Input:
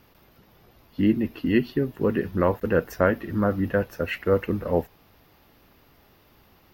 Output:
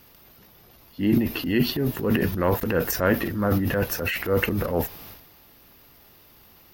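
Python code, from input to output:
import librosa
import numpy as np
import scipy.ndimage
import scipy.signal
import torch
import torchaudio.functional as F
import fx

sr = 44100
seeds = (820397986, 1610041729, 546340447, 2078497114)

y = fx.high_shelf(x, sr, hz=4300.0, db=11.5)
y = fx.transient(y, sr, attack_db=-6, sustain_db=11)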